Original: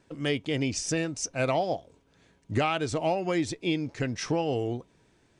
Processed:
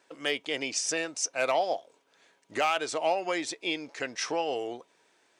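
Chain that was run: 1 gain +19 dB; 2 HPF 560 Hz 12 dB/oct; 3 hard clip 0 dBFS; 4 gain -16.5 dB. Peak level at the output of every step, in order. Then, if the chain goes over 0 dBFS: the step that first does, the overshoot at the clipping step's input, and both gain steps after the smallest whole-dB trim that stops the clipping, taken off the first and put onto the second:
+4.0, +4.5, 0.0, -16.5 dBFS; step 1, 4.5 dB; step 1 +14 dB, step 4 -11.5 dB

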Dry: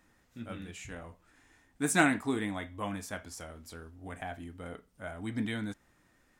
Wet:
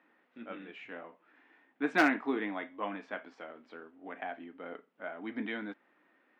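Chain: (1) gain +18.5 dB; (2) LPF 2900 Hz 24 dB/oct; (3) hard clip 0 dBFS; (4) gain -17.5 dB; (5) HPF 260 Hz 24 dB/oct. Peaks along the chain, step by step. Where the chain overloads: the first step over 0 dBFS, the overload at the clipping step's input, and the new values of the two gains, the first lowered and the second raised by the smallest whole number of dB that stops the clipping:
+5.5, +6.0, 0.0, -17.5, -11.5 dBFS; step 1, 6.0 dB; step 1 +12.5 dB, step 4 -11.5 dB

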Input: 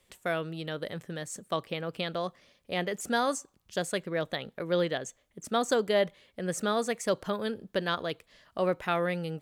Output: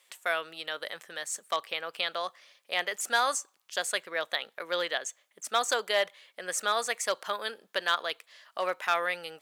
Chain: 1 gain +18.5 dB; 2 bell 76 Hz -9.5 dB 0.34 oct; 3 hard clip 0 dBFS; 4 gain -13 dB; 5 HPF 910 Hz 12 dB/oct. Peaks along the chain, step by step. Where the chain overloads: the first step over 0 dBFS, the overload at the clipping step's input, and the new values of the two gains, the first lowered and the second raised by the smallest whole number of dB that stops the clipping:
+4.5, +4.5, 0.0, -13.0, -11.0 dBFS; step 1, 4.5 dB; step 1 +13.5 dB, step 4 -8 dB

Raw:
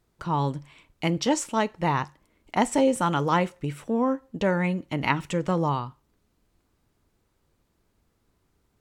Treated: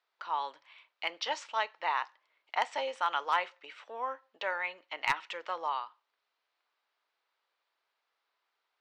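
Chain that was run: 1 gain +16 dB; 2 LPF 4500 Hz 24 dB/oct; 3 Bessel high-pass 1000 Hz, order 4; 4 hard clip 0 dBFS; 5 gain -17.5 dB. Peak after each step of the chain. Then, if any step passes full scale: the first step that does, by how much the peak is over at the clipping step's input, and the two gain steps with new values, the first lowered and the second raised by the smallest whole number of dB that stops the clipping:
+9.5, +9.5, +8.5, 0.0, -17.5 dBFS; step 1, 8.5 dB; step 1 +7 dB, step 5 -8.5 dB

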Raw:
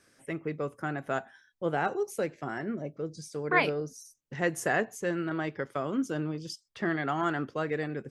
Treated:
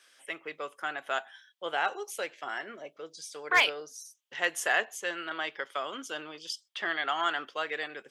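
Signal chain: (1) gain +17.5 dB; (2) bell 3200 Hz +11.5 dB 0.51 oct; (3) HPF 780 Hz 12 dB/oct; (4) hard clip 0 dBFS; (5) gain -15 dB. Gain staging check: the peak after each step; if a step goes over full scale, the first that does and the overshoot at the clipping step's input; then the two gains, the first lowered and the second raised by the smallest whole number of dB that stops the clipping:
+6.0, +7.5, +5.5, 0.0, -15.0 dBFS; step 1, 5.5 dB; step 1 +11.5 dB, step 5 -9 dB

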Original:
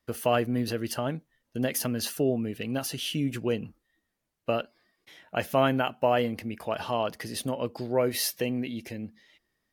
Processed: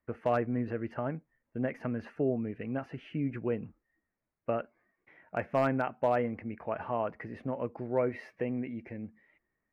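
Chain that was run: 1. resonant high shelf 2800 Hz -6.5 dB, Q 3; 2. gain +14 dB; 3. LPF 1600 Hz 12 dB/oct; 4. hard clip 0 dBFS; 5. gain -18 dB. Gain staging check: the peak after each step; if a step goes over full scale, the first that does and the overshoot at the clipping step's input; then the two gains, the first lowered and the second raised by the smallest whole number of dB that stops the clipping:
-9.0, +5.0, +4.0, 0.0, -18.0 dBFS; step 2, 4.0 dB; step 2 +10 dB, step 5 -14 dB

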